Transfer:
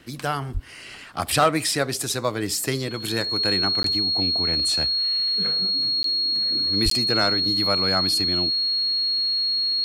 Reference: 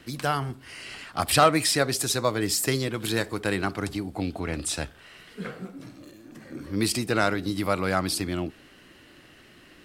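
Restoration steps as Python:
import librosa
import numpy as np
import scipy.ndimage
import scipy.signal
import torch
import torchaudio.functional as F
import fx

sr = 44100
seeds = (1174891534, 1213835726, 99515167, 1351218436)

y = fx.fix_declip(x, sr, threshold_db=-8.5)
y = fx.notch(y, sr, hz=4300.0, q=30.0)
y = fx.highpass(y, sr, hz=140.0, slope=24, at=(0.53, 0.65), fade=0.02)
y = fx.highpass(y, sr, hz=140.0, slope=24, at=(6.84, 6.96), fade=0.02)
y = fx.fix_interpolate(y, sr, at_s=(3.83, 6.03, 6.9), length_ms=13.0)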